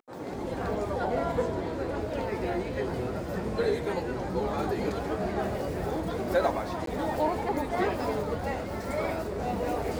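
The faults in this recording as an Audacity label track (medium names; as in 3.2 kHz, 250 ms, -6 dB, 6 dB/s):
6.860000	6.870000	dropout 13 ms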